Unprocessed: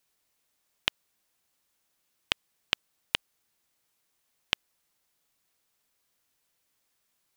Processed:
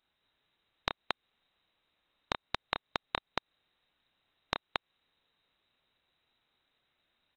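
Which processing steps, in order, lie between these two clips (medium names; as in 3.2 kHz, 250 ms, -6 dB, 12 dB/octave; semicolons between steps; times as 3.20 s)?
resonant low shelf 260 Hz +7.5 dB, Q 1.5; loudspeakers at several distances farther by 10 m -4 dB, 78 m -1 dB; frequency inversion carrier 3.9 kHz; compression 6:1, threshold -29 dBFS, peak gain reduction 9.5 dB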